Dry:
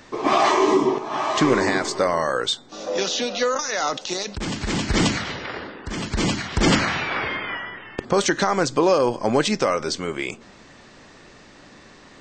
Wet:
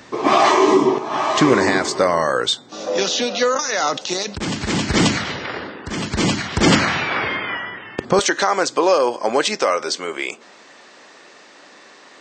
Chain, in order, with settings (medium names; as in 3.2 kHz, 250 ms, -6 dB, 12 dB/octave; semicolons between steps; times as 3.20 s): high-pass 77 Hz 12 dB/octave, from 8.19 s 410 Hz; trim +4 dB